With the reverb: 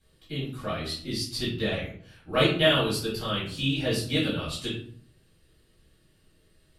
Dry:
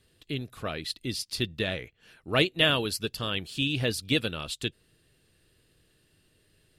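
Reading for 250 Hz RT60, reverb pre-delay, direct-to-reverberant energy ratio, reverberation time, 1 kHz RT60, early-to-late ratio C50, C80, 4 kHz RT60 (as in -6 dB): 0.70 s, 4 ms, -9.0 dB, 0.55 s, 0.55 s, 4.0 dB, 9.0 dB, 0.35 s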